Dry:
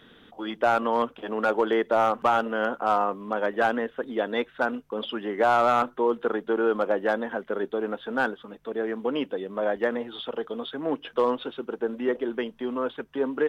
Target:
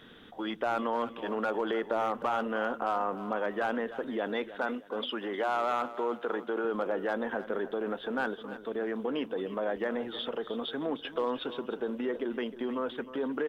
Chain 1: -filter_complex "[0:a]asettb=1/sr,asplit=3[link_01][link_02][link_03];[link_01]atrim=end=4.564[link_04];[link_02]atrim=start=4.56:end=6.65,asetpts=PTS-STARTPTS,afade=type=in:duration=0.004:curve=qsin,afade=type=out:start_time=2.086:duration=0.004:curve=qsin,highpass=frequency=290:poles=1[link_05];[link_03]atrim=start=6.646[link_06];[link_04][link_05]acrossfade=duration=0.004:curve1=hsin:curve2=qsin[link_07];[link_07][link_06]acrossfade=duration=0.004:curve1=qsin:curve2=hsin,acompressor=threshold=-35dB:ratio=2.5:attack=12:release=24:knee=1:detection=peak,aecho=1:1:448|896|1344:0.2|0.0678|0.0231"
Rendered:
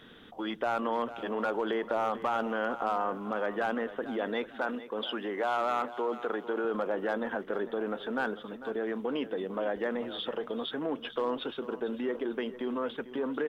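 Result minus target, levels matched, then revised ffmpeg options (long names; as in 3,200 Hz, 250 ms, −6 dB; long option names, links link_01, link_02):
echo 139 ms late
-filter_complex "[0:a]asettb=1/sr,asplit=3[link_01][link_02][link_03];[link_01]atrim=end=4.564[link_04];[link_02]atrim=start=4.56:end=6.65,asetpts=PTS-STARTPTS,afade=type=in:duration=0.004:curve=qsin,afade=type=out:start_time=2.086:duration=0.004:curve=qsin,highpass=frequency=290:poles=1[link_05];[link_03]atrim=start=6.646[link_06];[link_04][link_05]acrossfade=duration=0.004:curve1=hsin:curve2=qsin[link_07];[link_07][link_06]acrossfade=duration=0.004:curve1=qsin:curve2=hsin,acompressor=threshold=-35dB:ratio=2.5:attack=12:release=24:knee=1:detection=peak,aecho=1:1:309|618|927:0.2|0.0678|0.0231"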